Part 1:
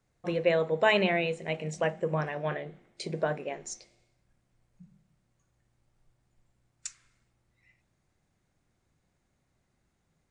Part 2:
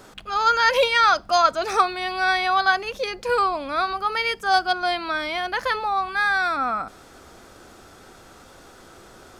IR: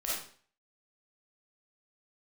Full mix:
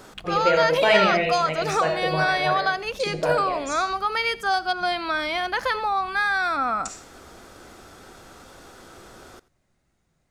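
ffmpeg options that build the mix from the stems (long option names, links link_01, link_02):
-filter_complex "[0:a]volume=-1dB,asplit=2[link_01][link_02];[link_02]volume=-3dB[link_03];[1:a]acompressor=threshold=-20dB:ratio=6,volume=1dB,asplit=2[link_04][link_05];[link_05]volume=-20.5dB[link_06];[2:a]atrim=start_sample=2205[link_07];[link_03][link_07]afir=irnorm=-1:irlink=0[link_08];[link_06]aecho=0:1:87:1[link_09];[link_01][link_04][link_08][link_09]amix=inputs=4:normalize=0"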